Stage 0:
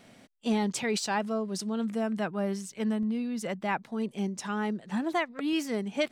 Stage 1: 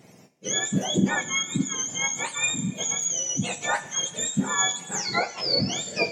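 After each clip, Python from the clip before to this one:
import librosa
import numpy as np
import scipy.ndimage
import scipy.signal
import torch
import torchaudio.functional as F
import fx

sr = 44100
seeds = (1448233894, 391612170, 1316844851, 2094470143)

y = fx.octave_mirror(x, sr, pivot_hz=1200.0)
y = fx.rider(y, sr, range_db=10, speed_s=2.0)
y = fx.rev_double_slope(y, sr, seeds[0], early_s=0.29, late_s=2.9, knee_db=-18, drr_db=6.5)
y = F.gain(torch.from_numpy(y), 6.0).numpy()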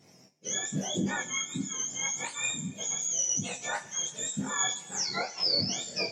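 y = fx.peak_eq(x, sr, hz=5400.0, db=12.5, octaves=0.32)
y = fx.detune_double(y, sr, cents=31)
y = F.gain(torch.from_numpy(y), -4.0).numpy()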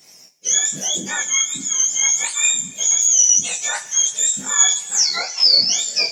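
y = fx.tilt_eq(x, sr, slope=4.0)
y = F.gain(torch.from_numpy(y), 5.5).numpy()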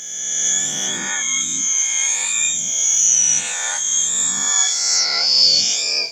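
y = fx.spec_swells(x, sr, rise_s=1.89)
y = F.gain(torch.from_numpy(y), -5.5).numpy()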